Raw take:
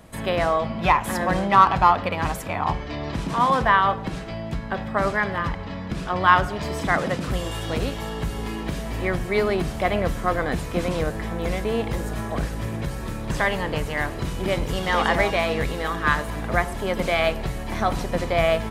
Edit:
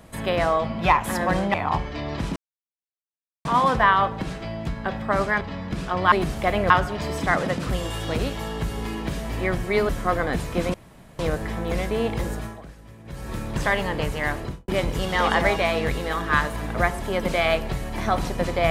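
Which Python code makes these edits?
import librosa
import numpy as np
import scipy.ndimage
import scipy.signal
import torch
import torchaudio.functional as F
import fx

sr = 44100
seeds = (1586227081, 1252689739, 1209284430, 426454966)

y = fx.studio_fade_out(x, sr, start_s=14.11, length_s=0.31)
y = fx.edit(y, sr, fx.cut(start_s=1.54, length_s=0.95),
    fx.insert_silence(at_s=3.31, length_s=1.09),
    fx.cut(start_s=5.27, length_s=0.33),
    fx.move(start_s=9.5, length_s=0.58, to_s=6.31),
    fx.insert_room_tone(at_s=10.93, length_s=0.45),
    fx.fade_down_up(start_s=12.05, length_s=1.04, db=-16.5, fade_s=0.31), tone=tone)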